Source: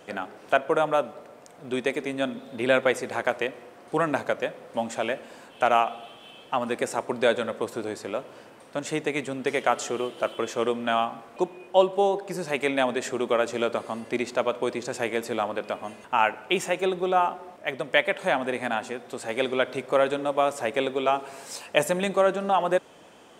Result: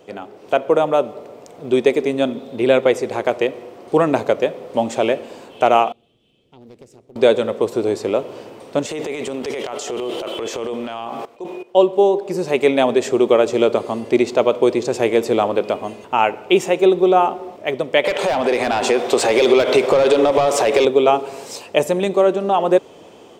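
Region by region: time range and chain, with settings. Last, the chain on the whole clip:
5.92–7.16 passive tone stack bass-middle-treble 10-0-1 + compressor 2:1, threshold -52 dBFS + Doppler distortion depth 0.55 ms
8.86–11.75 low shelf 230 Hz -12 dB + transient shaper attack -9 dB, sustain +10 dB + level quantiser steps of 19 dB
18.04–20.85 overdrive pedal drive 21 dB, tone 6700 Hz, clips at -7.5 dBFS + compressor 12:1, threshold -21 dBFS
whole clip: fifteen-band EQ 100 Hz +4 dB, 400 Hz +7 dB, 1600 Hz -8 dB, 10000 Hz -7 dB; AGC gain up to 10 dB

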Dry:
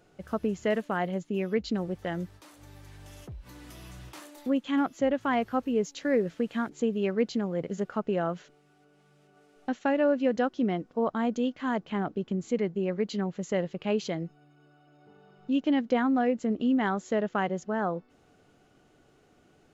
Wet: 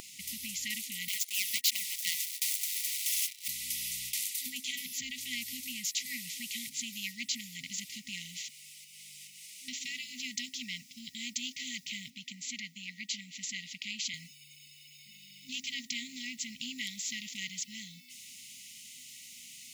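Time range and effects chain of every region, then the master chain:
1.08–3.48 steep high-pass 450 Hz 96 dB/oct + sample leveller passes 3
12.1–14.14 HPF 220 Hz + high shelf 3900 Hz -9 dB
whole clip: FFT band-reject 260–1900 Hz; differentiator; spectral compressor 2:1; gain +11 dB

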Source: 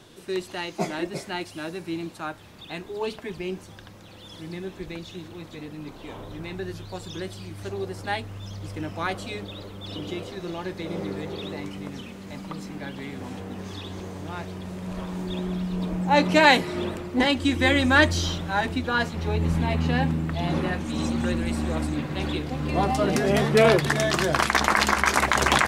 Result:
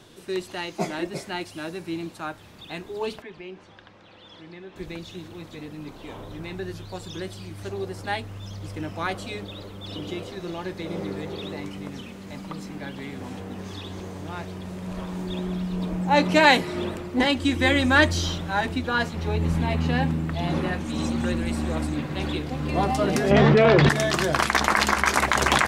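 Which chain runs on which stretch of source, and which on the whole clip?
3.22–4.76 LPF 3300 Hz + low shelf 250 Hz -11.5 dB + compressor 1.5:1, threshold -42 dBFS
23.31–23.89 air absorption 170 m + fast leveller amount 100%
whole clip: dry

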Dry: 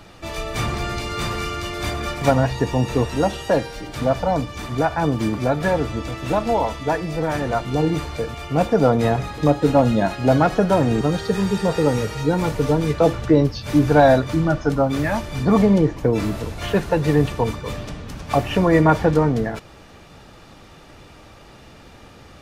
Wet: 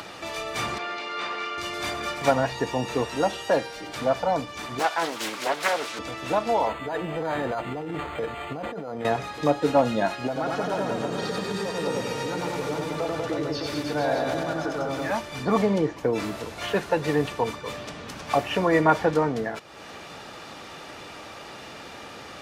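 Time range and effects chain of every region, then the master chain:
0.78–1.58 BPF 260–3500 Hz + low shelf 350 Hz -5.5 dB
4.79–5.99 HPF 170 Hz + tilt +3.5 dB/oct + Doppler distortion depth 0.56 ms
6.67–9.05 negative-ratio compressor -24 dBFS + decimation joined by straight lines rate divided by 8×
10.27–15.11 compressor 2.5:1, threshold -25 dBFS + reverse bouncing-ball echo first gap 90 ms, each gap 1.15×, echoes 5, each echo -2 dB
whole clip: HPF 490 Hz 6 dB/oct; high shelf 10000 Hz -6 dB; upward compressor, threshold -30 dBFS; gain -1 dB

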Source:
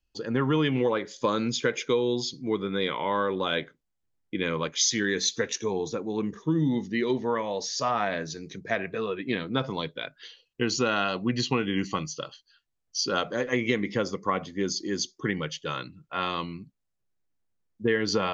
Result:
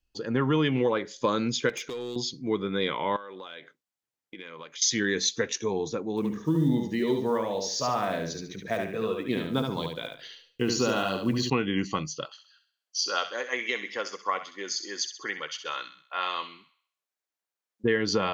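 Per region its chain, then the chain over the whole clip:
1.69–2.16 high shelf 2700 Hz +7 dB + compressor 16:1, threshold -29 dBFS + hard clip -30 dBFS
3.16–4.82 HPF 660 Hz 6 dB/oct + compressor 16:1, threshold -37 dBFS
6.17–11.5 block floating point 7-bit + dynamic EQ 1900 Hz, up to -7 dB, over -42 dBFS, Q 1 + feedback echo 72 ms, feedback 29%, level -4.5 dB
12.25–17.84 HPF 640 Hz + thin delay 65 ms, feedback 46%, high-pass 1500 Hz, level -9 dB
whole clip: dry

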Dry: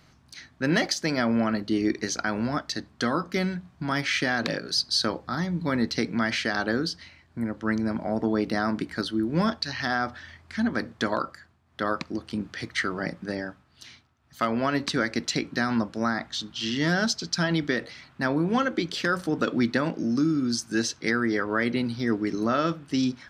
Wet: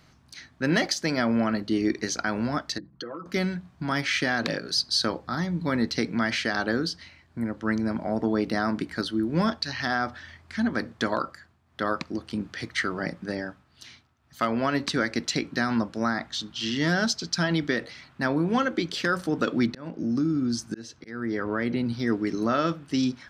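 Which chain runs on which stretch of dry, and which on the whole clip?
2.78–3.26 formant sharpening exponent 2 + comb 6 ms, depth 76% + compressor 16:1, threshold -32 dBFS
19.66–21.93 tilt -1.5 dB/oct + auto swell 0.442 s + compressor 2:1, threshold -24 dBFS
whole clip: dry

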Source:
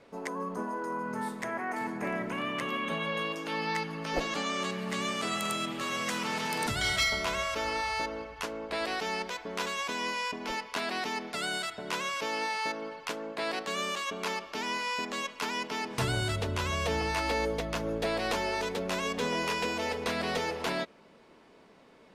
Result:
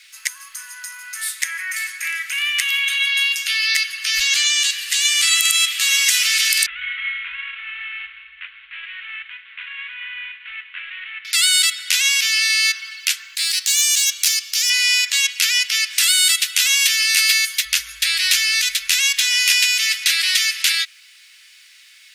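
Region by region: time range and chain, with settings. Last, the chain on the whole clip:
4.46–5.12 HPF 1300 Hz + notch 2200 Hz, Q 13
6.66–11.25 CVSD 16 kbps + LPF 1000 Hz 6 dB/oct + low shelf 340 Hz -8 dB
13.35–14.7 EQ curve 200 Hz 0 dB, 500 Hz -9 dB, 2700 Hz -6 dB, 5900 Hz +4 dB + hard clip -29 dBFS
16.03–17.65 HPF 200 Hz + high shelf 9700 Hz +5.5 dB
whole clip: inverse Chebyshev band-stop 110–810 Hz, stop band 50 dB; tilt +4 dB/oct; maximiser +15 dB; gain -1 dB

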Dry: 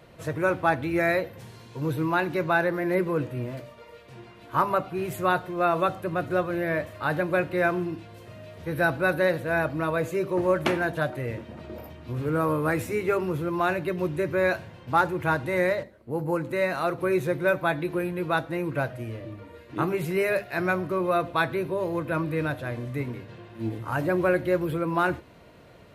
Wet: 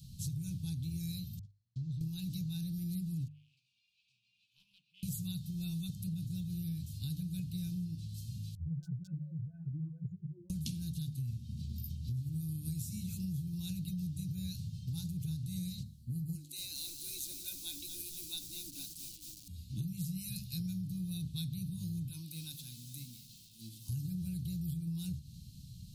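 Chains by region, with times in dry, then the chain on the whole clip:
1.39–2.01 gate -40 dBFS, range -42 dB + compressor 2.5:1, threshold -39 dBFS + air absorption 130 m
3.28–5.03 upward compressor, threshold -33 dBFS + band-pass 2500 Hz, Q 15 + Doppler distortion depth 0.71 ms
8.55–10.5 spectral contrast raised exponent 3.5 + overloaded stage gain 16 dB + ensemble effect
16.35–19.48 brick-wall FIR high-pass 270 Hz + lo-fi delay 0.232 s, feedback 55%, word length 7-bit, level -9 dB
22.09–23.89 HPF 490 Hz + bell 920 Hz +4.5 dB 0.31 oct + lo-fi delay 0.216 s, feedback 55%, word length 8-bit, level -14 dB
whole clip: inverse Chebyshev band-stop 380–2000 Hz, stop band 50 dB; notches 50/100/150 Hz; compressor, threshold -44 dBFS; gain +8 dB

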